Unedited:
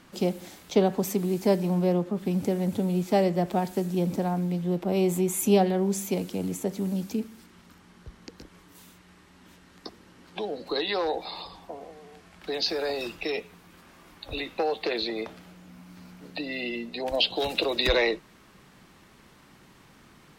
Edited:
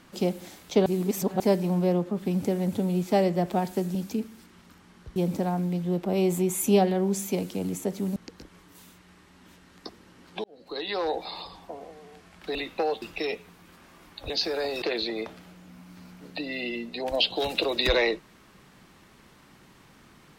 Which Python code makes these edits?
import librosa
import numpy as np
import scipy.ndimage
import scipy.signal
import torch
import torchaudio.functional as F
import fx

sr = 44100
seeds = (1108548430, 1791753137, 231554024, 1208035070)

y = fx.edit(x, sr, fx.reverse_span(start_s=0.86, length_s=0.54),
    fx.move(start_s=6.95, length_s=1.21, to_s=3.95),
    fx.fade_in_span(start_s=10.44, length_s=0.65),
    fx.swap(start_s=12.55, length_s=0.52, other_s=14.35, other_length_s=0.47), tone=tone)